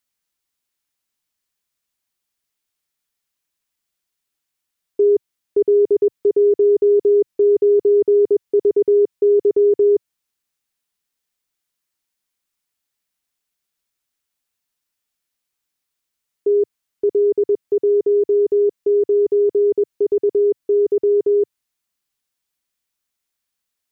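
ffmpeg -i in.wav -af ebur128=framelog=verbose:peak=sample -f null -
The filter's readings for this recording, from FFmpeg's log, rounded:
Integrated loudness:
  I:         -16.9 LUFS
  Threshold: -26.9 LUFS
Loudness range:
  LRA:        10.0 LU
  Threshold: -38.5 LUFS
  LRA low:   -25.6 LUFS
  LRA high:  -15.6 LUFS
Sample peak:
  Peak:       -9.5 dBFS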